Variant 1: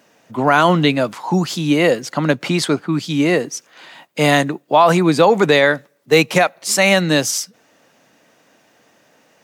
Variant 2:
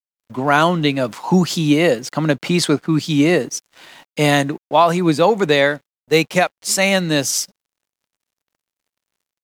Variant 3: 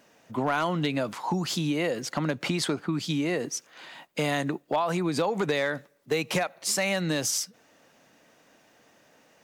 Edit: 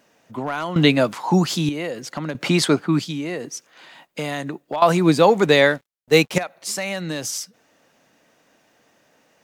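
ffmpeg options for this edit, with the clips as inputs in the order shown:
-filter_complex "[0:a]asplit=2[s0][s1];[2:a]asplit=4[s2][s3][s4][s5];[s2]atrim=end=0.762[s6];[s0]atrim=start=0.758:end=1.692[s7];[s3]atrim=start=1.688:end=2.352[s8];[s1]atrim=start=2.348:end=3.042[s9];[s4]atrim=start=3.038:end=4.822[s10];[1:a]atrim=start=4.818:end=6.382[s11];[s5]atrim=start=6.378[s12];[s6][s7]acrossfade=d=0.004:c1=hsin:c2=hsin[s13];[s13][s8]acrossfade=d=0.004:c1=hsin:c2=hsin[s14];[s14][s9]acrossfade=d=0.004:c1=hsin:c2=hsin[s15];[s15][s10]acrossfade=d=0.004:c1=hsin:c2=hsin[s16];[s16][s11]acrossfade=d=0.004:c1=hsin:c2=hsin[s17];[s17][s12]acrossfade=d=0.004:c1=hsin:c2=hsin"

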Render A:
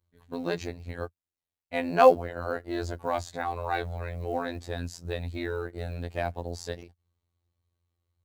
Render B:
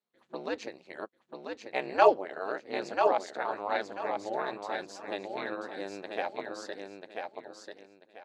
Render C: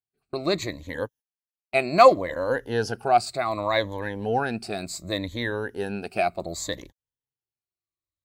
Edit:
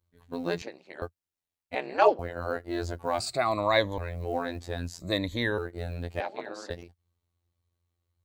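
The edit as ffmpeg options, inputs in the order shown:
-filter_complex "[1:a]asplit=3[s0][s1][s2];[2:a]asplit=2[s3][s4];[0:a]asplit=6[s5][s6][s7][s8][s9][s10];[s5]atrim=end=0.622[s11];[s0]atrim=start=0.618:end=1.022[s12];[s6]atrim=start=1.018:end=1.752[s13];[s1]atrim=start=1.748:end=2.192[s14];[s7]atrim=start=2.188:end=3.202[s15];[s3]atrim=start=3.198:end=3.982[s16];[s8]atrim=start=3.978:end=5.002[s17];[s4]atrim=start=4.998:end=5.582[s18];[s9]atrim=start=5.578:end=6.202[s19];[s2]atrim=start=6.198:end=6.702[s20];[s10]atrim=start=6.698[s21];[s11][s12]acrossfade=d=0.004:c1=hsin:c2=hsin[s22];[s22][s13]acrossfade=d=0.004:c1=hsin:c2=hsin[s23];[s23][s14]acrossfade=d=0.004:c1=hsin:c2=hsin[s24];[s24][s15]acrossfade=d=0.004:c1=hsin:c2=hsin[s25];[s25][s16]acrossfade=d=0.004:c1=hsin:c2=hsin[s26];[s26][s17]acrossfade=d=0.004:c1=hsin:c2=hsin[s27];[s27][s18]acrossfade=d=0.004:c1=hsin:c2=hsin[s28];[s28][s19]acrossfade=d=0.004:c1=hsin:c2=hsin[s29];[s29][s20]acrossfade=d=0.004:c1=hsin:c2=hsin[s30];[s30][s21]acrossfade=d=0.004:c1=hsin:c2=hsin"

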